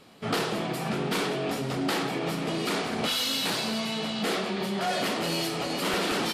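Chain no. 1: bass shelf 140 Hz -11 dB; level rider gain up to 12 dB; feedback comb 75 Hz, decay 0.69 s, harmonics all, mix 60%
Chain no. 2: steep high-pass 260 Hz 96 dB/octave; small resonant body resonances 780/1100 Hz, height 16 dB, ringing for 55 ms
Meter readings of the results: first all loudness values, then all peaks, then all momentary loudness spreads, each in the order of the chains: -23.5 LUFS, -26.0 LUFS; -12.5 dBFS, -10.5 dBFS; 6 LU, 4 LU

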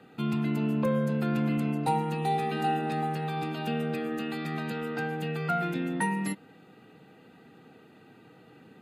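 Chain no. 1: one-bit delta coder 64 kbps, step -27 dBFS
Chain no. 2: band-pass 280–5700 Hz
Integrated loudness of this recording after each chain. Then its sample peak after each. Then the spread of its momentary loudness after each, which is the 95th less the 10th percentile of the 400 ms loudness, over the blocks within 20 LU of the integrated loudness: -29.5 LUFS, -32.5 LUFS; -13.5 dBFS, -15.5 dBFS; 5 LU, 6 LU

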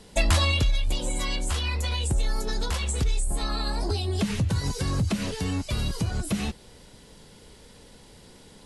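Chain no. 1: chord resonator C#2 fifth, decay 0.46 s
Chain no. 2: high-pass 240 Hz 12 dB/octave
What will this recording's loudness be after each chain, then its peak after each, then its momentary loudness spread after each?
-39.0 LUFS, -31.0 LUFS; -24.0 dBFS, -13.0 dBFS; 7 LU, 7 LU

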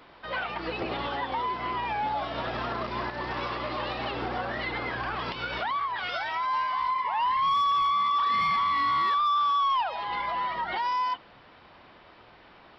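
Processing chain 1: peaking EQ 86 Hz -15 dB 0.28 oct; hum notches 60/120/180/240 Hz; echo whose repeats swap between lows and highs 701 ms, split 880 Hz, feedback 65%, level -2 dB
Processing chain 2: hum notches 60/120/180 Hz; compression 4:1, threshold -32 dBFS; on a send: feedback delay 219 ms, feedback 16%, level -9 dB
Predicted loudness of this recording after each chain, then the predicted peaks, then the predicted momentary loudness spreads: -27.0 LUFS, -33.0 LUFS; -15.0 dBFS, -23.5 dBFS; 9 LU, 9 LU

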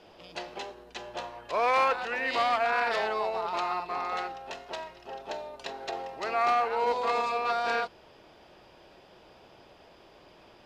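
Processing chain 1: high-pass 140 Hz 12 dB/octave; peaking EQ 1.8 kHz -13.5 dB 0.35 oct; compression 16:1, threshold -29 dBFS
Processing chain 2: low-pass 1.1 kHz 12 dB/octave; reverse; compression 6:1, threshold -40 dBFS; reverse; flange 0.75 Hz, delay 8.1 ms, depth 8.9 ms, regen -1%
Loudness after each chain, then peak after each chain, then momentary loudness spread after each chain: -35.5 LUFS, -46.5 LUFS; -21.0 dBFS, -33.0 dBFS; 10 LU, 16 LU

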